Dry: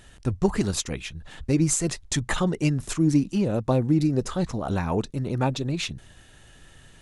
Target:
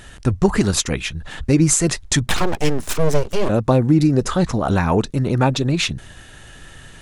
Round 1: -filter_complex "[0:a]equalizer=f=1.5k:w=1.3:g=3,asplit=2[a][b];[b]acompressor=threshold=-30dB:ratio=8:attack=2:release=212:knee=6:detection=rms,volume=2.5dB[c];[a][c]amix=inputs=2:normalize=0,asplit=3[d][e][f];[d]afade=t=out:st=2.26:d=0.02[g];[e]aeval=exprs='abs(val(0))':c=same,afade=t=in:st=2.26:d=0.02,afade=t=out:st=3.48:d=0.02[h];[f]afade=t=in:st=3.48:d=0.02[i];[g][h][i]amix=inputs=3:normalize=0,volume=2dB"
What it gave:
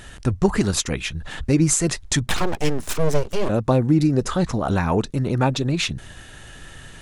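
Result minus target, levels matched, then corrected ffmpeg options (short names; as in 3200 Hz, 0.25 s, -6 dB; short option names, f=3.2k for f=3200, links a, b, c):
compressor: peak gain reduction +9 dB
-filter_complex "[0:a]equalizer=f=1.5k:w=1.3:g=3,asplit=2[a][b];[b]acompressor=threshold=-19.5dB:ratio=8:attack=2:release=212:knee=6:detection=rms,volume=2.5dB[c];[a][c]amix=inputs=2:normalize=0,asplit=3[d][e][f];[d]afade=t=out:st=2.26:d=0.02[g];[e]aeval=exprs='abs(val(0))':c=same,afade=t=in:st=2.26:d=0.02,afade=t=out:st=3.48:d=0.02[h];[f]afade=t=in:st=3.48:d=0.02[i];[g][h][i]amix=inputs=3:normalize=0,volume=2dB"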